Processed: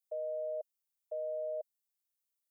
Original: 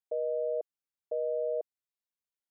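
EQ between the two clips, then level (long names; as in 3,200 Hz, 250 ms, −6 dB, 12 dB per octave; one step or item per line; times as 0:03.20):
high-pass with resonance 590 Hz, resonance Q 4.9
first difference
+4.5 dB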